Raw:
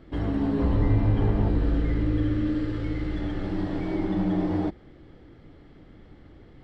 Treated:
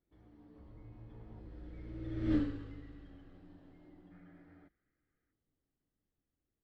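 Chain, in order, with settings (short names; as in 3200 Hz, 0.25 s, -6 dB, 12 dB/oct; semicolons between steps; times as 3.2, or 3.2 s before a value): Doppler pass-by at 2.35, 21 m/s, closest 1.1 m; spectral gain 4.12–5.32, 1200–2500 Hz +12 dB; gain -2.5 dB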